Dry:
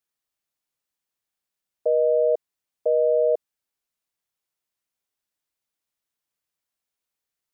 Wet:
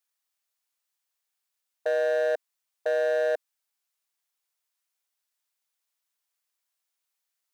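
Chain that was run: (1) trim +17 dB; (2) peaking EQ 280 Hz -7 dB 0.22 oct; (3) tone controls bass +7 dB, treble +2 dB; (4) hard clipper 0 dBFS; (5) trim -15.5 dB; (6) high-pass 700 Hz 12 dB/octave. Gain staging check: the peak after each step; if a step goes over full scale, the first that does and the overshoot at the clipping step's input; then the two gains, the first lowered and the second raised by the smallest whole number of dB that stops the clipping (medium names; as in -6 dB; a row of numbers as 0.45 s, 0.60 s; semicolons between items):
+3.5 dBFS, +3.5 dBFS, +4.0 dBFS, 0.0 dBFS, -15.5 dBFS, -18.5 dBFS; step 1, 4.0 dB; step 1 +13 dB, step 5 -11.5 dB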